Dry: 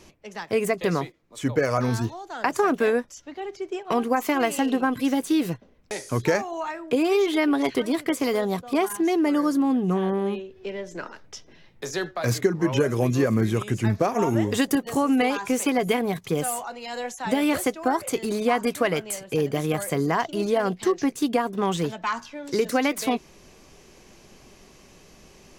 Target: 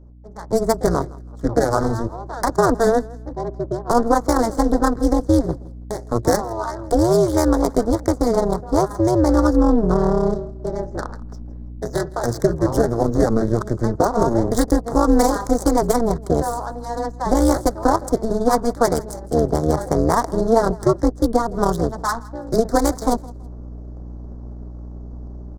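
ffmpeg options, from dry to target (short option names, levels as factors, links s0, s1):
-filter_complex "[0:a]acrossover=split=170[s0][s1];[s0]alimiter=level_in=2.24:limit=0.0631:level=0:latency=1,volume=0.447[s2];[s1]adynamicsmooth=sensitivity=4.5:basefreq=660[s3];[s2][s3]amix=inputs=2:normalize=0,asuperstop=centerf=2600:order=4:qfactor=0.74,tremolo=f=230:d=0.974,atempo=1,aeval=exprs='val(0)+0.00501*(sin(2*PI*60*n/s)+sin(2*PI*2*60*n/s)/2+sin(2*PI*3*60*n/s)/3+sin(2*PI*4*60*n/s)/4+sin(2*PI*5*60*n/s)/5)':c=same,bass=f=250:g=3,treble=f=4000:g=8,aecho=1:1:163|326:0.0794|0.0214,dynaudnorm=f=130:g=7:m=3.55,equalizer=f=150:w=0.79:g=-4,volume=1.19"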